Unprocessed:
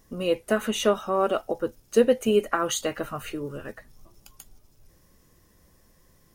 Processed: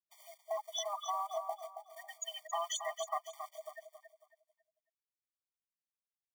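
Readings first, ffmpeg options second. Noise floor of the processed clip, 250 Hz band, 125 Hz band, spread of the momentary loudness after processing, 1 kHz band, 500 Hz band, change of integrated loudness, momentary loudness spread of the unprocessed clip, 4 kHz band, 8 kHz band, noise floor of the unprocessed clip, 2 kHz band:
under -85 dBFS, under -40 dB, under -40 dB, 15 LU, -7.5 dB, -19.0 dB, -14.5 dB, 13 LU, -9.0 dB, -8.0 dB, -61 dBFS, -17.0 dB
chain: -filter_complex "[0:a]lowshelf=f=370:t=q:w=1.5:g=-6,afftfilt=real='re*gte(hypot(re,im),0.0562)':imag='im*gte(hypot(re,im),0.0562)':win_size=1024:overlap=0.75,areverse,acompressor=threshold=-33dB:ratio=6,areverse,alimiter=level_in=6dB:limit=-24dB:level=0:latency=1:release=16,volume=-6dB,acrossover=split=1100|3100[a][b][c];[a]acompressor=threshold=-51dB:ratio=4[d];[b]acompressor=threshold=-60dB:ratio=4[e];[c]acompressor=threshold=-51dB:ratio=4[f];[d][e][f]amix=inputs=3:normalize=0,acrusher=bits=6:mode=log:mix=0:aa=0.000001,asplit=2[g][h];[h]aecho=0:1:274|548|822|1096:0.376|0.117|0.0361|0.0112[i];[g][i]amix=inputs=2:normalize=0,afftfilt=real='re*eq(mod(floor(b*sr/1024/610),2),1)':imag='im*eq(mod(floor(b*sr/1024/610),2),1)':win_size=1024:overlap=0.75,volume=18dB"

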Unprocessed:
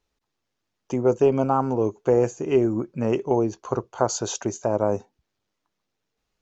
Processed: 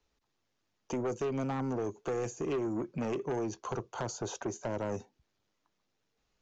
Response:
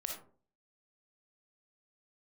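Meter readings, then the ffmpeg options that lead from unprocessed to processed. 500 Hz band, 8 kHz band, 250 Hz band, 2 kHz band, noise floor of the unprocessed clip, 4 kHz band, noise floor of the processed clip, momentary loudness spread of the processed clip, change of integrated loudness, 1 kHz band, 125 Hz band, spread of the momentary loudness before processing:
-13.0 dB, n/a, -10.5 dB, -5.5 dB, -80 dBFS, -10.0 dB, -80 dBFS, 5 LU, -12.0 dB, -12.5 dB, -10.0 dB, 8 LU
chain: -filter_complex "[0:a]acrossover=split=91|380|1900[a][b][c][d];[a]acompressor=threshold=-56dB:ratio=4[e];[b]acompressor=threshold=-30dB:ratio=4[f];[c]acompressor=threshold=-34dB:ratio=4[g];[d]acompressor=threshold=-44dB:ratio=4[h];[e][f][g][h]amix=inputs=4:normalize=0,aresample=16000,asoftclip=type=tanh:threshold=-28.5dB,aresample=44100"

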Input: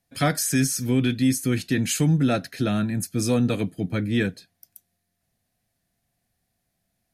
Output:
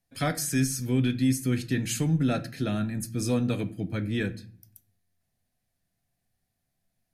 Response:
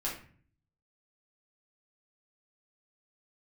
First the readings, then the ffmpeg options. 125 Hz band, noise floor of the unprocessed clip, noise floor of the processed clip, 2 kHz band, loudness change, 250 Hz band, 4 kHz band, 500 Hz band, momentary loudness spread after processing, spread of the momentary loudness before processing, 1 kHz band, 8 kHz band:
-3.5 dB, -77 dBFS, -80 dBFS, -5.5 dB, -4.5 dB, -4.5 dB, -5.5 dB, -5.0 dB, 6 LU, 5 LU, -5.5 dB, -5.5 dB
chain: -filter_complex "[0:a]asplit=2[a][b];[1:a]atrim=start_sample=2205,lowshelf=f=120:g=12[c];[b][c]afir=irnorm=-1:irlink=0,volume=-13dB[d];[a][d]amix=inputs=2:normalize=0,volume=-7dB"

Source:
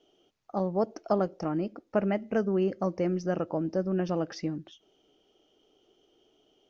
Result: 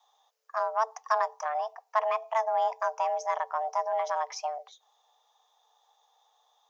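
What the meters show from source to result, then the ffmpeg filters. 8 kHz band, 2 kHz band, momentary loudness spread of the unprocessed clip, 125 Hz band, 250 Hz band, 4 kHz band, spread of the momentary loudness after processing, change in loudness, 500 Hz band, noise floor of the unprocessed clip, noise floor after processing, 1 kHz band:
n/a, +5.0 dB, 5 LU, under -40 dB, under -40 dB, +2.0 dB, 6 LU, 0.0 dB, -2.5 dB, -70 dBFS, -72 dBFS, +10.5 dB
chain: -af "aeval=exprs='0.237*(cos(1*acos(clip(val(0)/0.237,-1,1)))-cos(1*PI/2))+0.00668*(cos(7*acos(clip(val(0)/0.237,-1,1)))-cos(7*PI/2))+0.00188*(cos(8*acos(clip(val(0)/0.237,-1,1)))-cos(8*PI/2))':c=same,afreqshift=440,aexciter=amount=2.2:drive=3.7:freq=4.8k"

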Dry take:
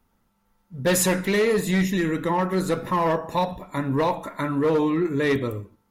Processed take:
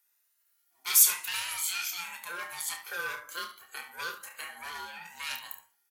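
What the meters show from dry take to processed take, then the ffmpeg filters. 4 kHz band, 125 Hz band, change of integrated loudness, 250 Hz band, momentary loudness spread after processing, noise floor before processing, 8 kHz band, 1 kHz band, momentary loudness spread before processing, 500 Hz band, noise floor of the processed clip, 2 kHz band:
-0.5 dB, -38.5 dB, -5.5 dB, -38.5 dB, 21 LU, -69 dBFS, +3.0 dB, -14.5 dB, 7 LU, -29.0 dB, -74 dBFS, -5.5 dB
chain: -filter_complex "[0:a]afftfilt=real='re*pow(10,9/40*sin(2*PI*(1.9*log(max(b,1)*sr/1024/100)/log(2)-(1)*(pts-256)/sr)))':imag='im*pow(10,9/40*sin(2*PI*(1.9*log(max(b,1)*sr/1024/100)/log(2)-(1)*(pts-256)/sr)))':win_size=1024:overlap=0.75,highpass=650,aeval=exprs='val(0)*sin(2*PI*520*n/s)':c=same,aderivative,asplit=2[a][b];[b]aecho=0:1:29|71:0.422|0.224[c];[a][c]amix=inputs=2:normalize=0,volume=5.5dB"

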